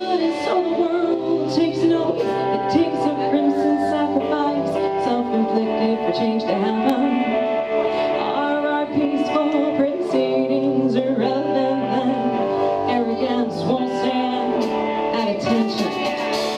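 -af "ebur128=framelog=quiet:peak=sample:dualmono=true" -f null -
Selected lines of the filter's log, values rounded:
Integrated loudness:
  I:         -17.2 LUFS
  Threshold: -27.2 LUFS
Loudness range:
  LRA:         1.3 LU
  Threshold: -37.1 LUFS
  LRA low:   -17.8 LUFS
  LRA high:  -16.5 LUFS
Sample peak:
  Peak:       -5.7 dBFS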